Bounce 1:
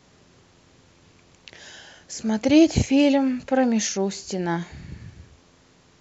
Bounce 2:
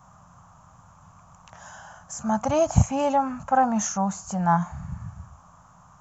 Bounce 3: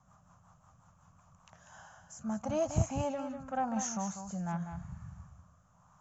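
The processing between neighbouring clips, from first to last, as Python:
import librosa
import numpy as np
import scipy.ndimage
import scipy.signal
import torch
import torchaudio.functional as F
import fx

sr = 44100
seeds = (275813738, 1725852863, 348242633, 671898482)

y1 = fx.curve_eq(x, sr, hz=(180.0, 380.0, 680.0, 1200.0, 2000.0, 3000.0, 4400.0, 6300.0, 9200.0), db=(0, -27, 2, 9, -16, -16, -22, -5, 0))
y1 = F.gain(torch.from_numpy(y1), 4.5).numpy()
y2 = 10.0 ** (-8.0 / 20.0) * np.tanh(y1 / 10.0 ** (-8.0 / 20.0))
y2 = fx.rotary_switch(y2, sr, hz=5.5, then_hz=0.9, switch_at_s=1.07)
y2 = y2 + 10.0 ** (-8.5 / 20.0) * np.pad(y2, (int(194 * sr / 1000.0), 0))[:len(y2)]
y2 = F.gain(torch.from_numpy(y2), -8.5).numpy()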